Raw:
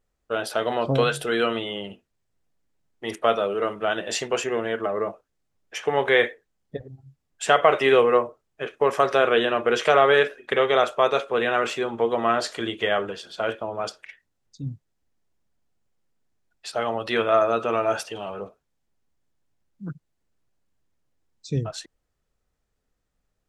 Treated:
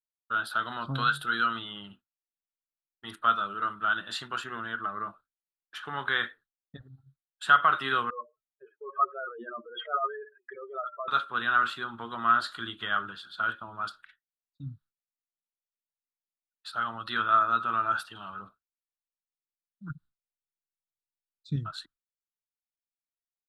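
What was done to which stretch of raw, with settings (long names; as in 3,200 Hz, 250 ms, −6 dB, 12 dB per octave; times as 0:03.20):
0:08.10–0:11.08: expanding power law on the bin magnitudes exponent 3.9
0:19.90–0:21.56: low-shelf EQ 390 Hz +7 dB
whole clip: drawn EQ curve 170 Hz 0 dB, 300 Hz −4 dB, 480 Hz −19 dB, 770 Hz −9 dB, 1,400 Hz +11 dB, 2,200 Hz −15 dB, 3,900 Hz 0 dB, 5,900 Hz −23 dB, 10,000 Hz −11 dB; downward expander −44 dBFS; high-shelf EQ 2,500 Hz +11.5 dB; level −7.5 dB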